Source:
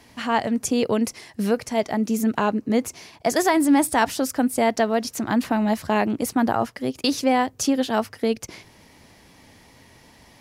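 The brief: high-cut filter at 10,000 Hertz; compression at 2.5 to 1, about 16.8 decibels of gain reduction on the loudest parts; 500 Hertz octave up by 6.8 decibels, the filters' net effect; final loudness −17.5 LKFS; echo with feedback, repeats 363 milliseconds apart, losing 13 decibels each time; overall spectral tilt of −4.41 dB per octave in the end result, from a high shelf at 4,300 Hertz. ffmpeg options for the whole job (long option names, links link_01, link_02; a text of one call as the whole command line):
ffmpeg -i in.wav -af "lowpass=10000,equalizer=frequency=500:width_type=o:gain=8.5,highshelf=frequency=4300:gain=-3.5,acompressor=threshold=-37dB:ratio=2.5,aecho=1:1:363|726|1089:0.224|0.0493|0.0108,volume=16.5dB" out.wav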